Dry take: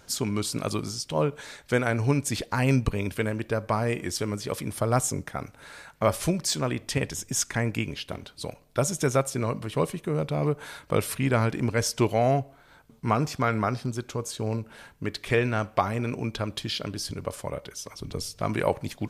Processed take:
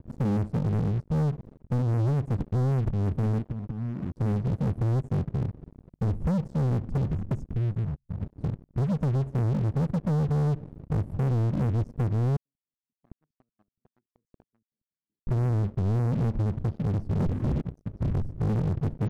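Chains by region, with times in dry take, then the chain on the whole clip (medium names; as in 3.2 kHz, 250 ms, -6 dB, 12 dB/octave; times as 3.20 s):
3.38–4.16 s: bass shelf 200 Hz -10.5 dB + compression 16:1, threshold -34 dBFS + loudspeaker Doppler distortion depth 0.42 ms
7.53–8.21 s: inverse Chebyshev band-stop 450–1800 Hz, stop band 60 dB + peaking EQ 110 Hz -10.5 dB 2.9 oct
12.36–15.27 s: compression 12:1, threshold -30 dBFS + LFO high-pass square 5.3 Hz 900–4900 Hz
17.20–17.61 s: hum notches 50/100/150/200/250/300/350/400/450/500 Hz + overdrive pedal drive 37 dB, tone 2.6 kHz, clips at -15.5 dBFS
whole clip: inverse Chebyshev low-pass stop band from 740 Hz, stop band 60 dB; compression 12:1, threshold -30 dBFS; waveshaping leveller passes 5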